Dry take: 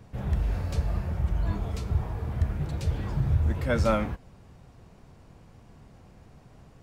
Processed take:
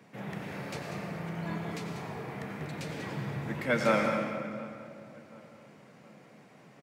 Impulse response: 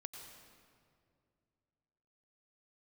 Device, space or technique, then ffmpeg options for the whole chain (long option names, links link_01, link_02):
PA in a hall: -filter_complex "[0:a]highpass=130,highpass=frequency=150:width=0.5412,highpass=frequency=150:width=1.3066,equalizer=frequency=2100:width_type=o:width=0.69:gain=8,aecho=1:1:192:0.316[link_01];[1:a]atrim=start_sample=2205[link_02];[link_01][link_02]afir=irnorm=-1:irlink=0,asplit=2[link_03][link_04];[link_04]adelay=725,lowpass=frequency=2000:poles=1,volume=-20dB,asplit=2[link_05][link_06];[link_06]adelay=725,lowpass=frequency=2000:poles=1,volume=0.47,asplit=2[link_07][link_08];[link_08]adelay=725,lowpass=frequency=2000:poles=1,volume=0.47,asplit=2[link_09][link_10];[link_10]adelay=725,lowpass=frequency=2000:poles=1,volume=0.47[link_11];[link_03][link_05][link_07][link_09][link_11]amix=inputs=5:normalize=0,volume=3.5dB"